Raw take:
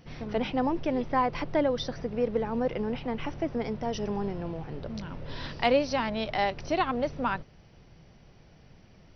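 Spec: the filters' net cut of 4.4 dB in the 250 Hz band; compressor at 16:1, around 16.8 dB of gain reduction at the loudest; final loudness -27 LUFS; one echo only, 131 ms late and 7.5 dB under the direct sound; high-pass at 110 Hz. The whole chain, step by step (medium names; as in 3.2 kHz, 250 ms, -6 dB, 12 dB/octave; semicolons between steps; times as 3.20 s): high-pass 110 Hz; peaking EQ 250 Hz -5 dB; compression 16:1, threshold -37 dBFS; delay 131 ms -7.5 dB; trim +14.5 dB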